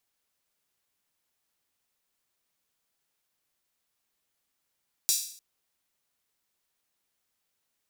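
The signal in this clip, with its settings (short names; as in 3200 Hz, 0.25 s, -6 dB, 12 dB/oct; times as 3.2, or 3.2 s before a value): open hi-hat length 0.30 s, high-pass 5200 Hz, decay 0.56 s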